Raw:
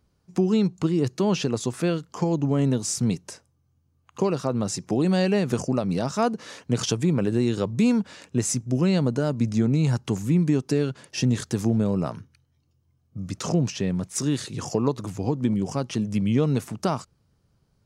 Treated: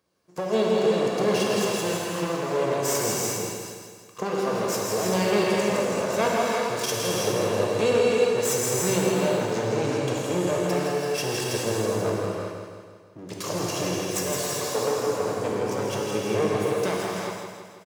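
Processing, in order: comb filter that takes the minimum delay 1.8 ms; high-pass 240 Hz 12 dB/octave; on a send: feedback delay 163 ms, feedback 54%, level -6 dB; on the sum: gated-style reverb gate 440 ms flat, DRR -3.5 dB

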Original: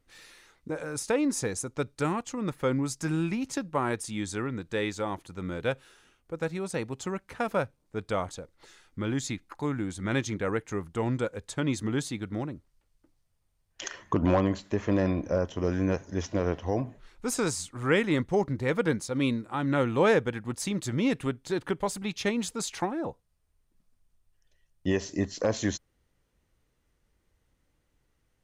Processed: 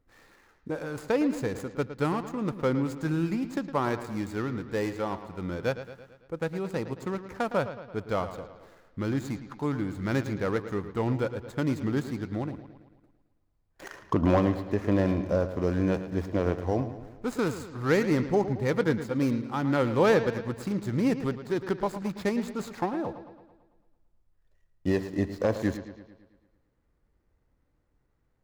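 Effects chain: median filter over 15 samples; bucket-brigade echo 111 ms, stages 4096, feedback 55%, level -12 dB; trim +1 dB

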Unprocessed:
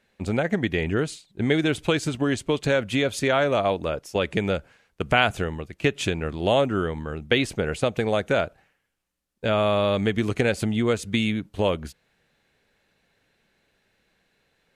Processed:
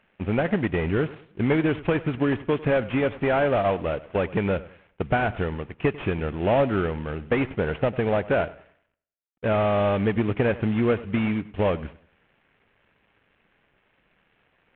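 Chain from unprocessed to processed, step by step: CVSD coder 16 kbps; modulated delay 98 ms, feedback 32%, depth 57 cents, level -18.5 dB; trim +1.5 dB

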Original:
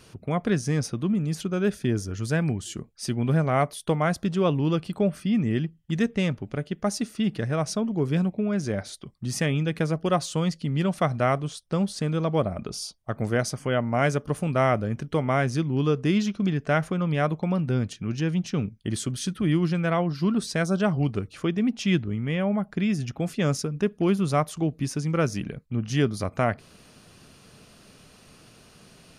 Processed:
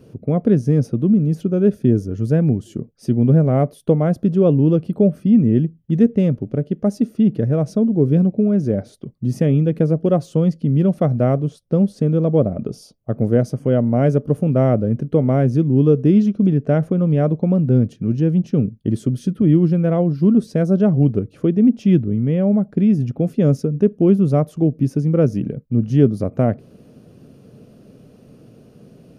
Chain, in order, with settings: graphic EQ 125/250/500/1000/2000/4000/8000 Hz +9/+9/+10/-6/-6/-7/-10 dB; trim -1 dB

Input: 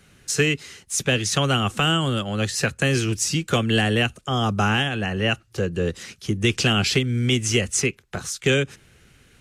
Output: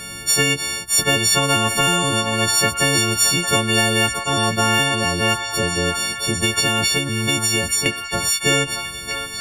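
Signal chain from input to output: partials quantised in pitch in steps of 4 st; 6.40–7.86 s: compression, threshold -16 dBFS, peak gain reduction 9 dB; repeats whose band climbs or falls 626 ms, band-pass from 1.1 kHz, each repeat 0.7 oct, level -10 dB; spectrum-flattening compressor 2:1; trim -3 dB

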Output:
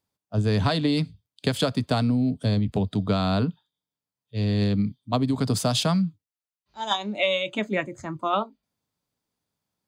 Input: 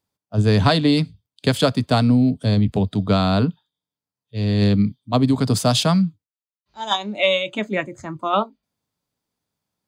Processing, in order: compression, threshold -17 dBFS, peak gain reduction 6 dB; trim -2 dB

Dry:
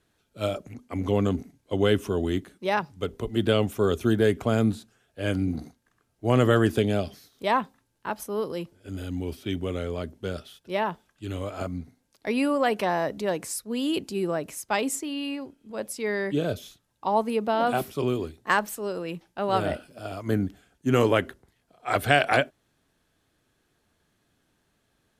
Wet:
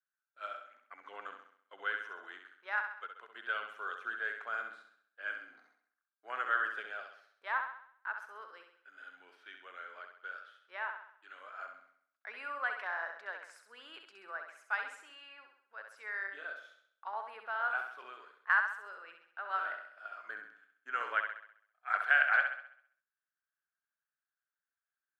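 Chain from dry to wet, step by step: high-pass 620 Hz 12 dB/octave; gate -59 dBFS, range -16 dB; resonant low-pass 1.5 kHz, resonance Q 5.4; differentiator; flutter echo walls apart 11.3 m, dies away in 0.61 s

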